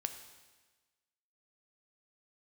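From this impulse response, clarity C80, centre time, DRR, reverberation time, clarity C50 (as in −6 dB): 11.0 dB, 17 ms, 7.0 dB, 1.3 s, 9.5 dB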